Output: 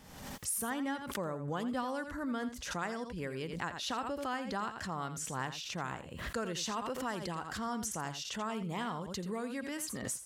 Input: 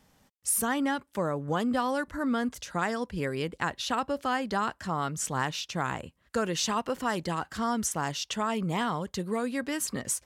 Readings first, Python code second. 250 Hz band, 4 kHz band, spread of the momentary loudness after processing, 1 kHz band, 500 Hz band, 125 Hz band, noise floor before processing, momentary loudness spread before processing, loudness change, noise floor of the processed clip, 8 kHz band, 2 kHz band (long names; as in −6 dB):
−7.5 dB, −6.0 dB, 4 LU, −8.0 dB, −7.5 dB, −7.0 dB, −69 dBFS, 4 LU, −7.5 dB, −47 dBFS, −7.0 dB, −7.0 dB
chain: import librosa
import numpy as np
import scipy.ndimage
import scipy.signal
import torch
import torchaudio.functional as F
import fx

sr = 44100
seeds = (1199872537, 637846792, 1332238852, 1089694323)

y = x + 10.0 ** (-11.5 / 20.0) * np.pad(x, (int(84 * sr / 1000.0), 0))[:len(x)]
y = fx.pre_swell(y, sr, db_per_s=49.0)
y = F.gain(torch.from_numpy(y), -8.5).numpy()